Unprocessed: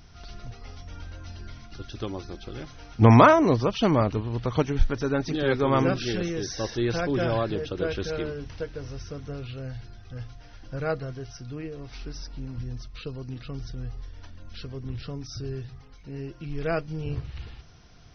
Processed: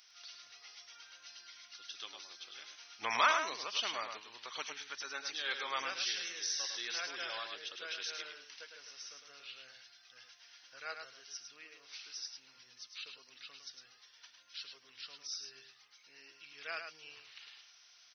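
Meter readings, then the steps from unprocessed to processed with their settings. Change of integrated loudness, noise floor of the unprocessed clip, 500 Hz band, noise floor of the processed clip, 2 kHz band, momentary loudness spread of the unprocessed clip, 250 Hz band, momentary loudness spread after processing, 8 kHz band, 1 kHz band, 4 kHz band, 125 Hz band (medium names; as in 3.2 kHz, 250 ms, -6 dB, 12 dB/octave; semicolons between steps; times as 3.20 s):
-13.5 dB, -48 dBFS, -23.0 dB, -63 dBFS, -5.5 dB, 20 LU, -34.5 dB, 21 LU, no reading, -12.0 dB, 0.0 dB, under -40 dB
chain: Bessel high-pass 2.8 kHz, order 2; on a send: delay 105 ms -6.5 dB; on the sum: trim +1 dB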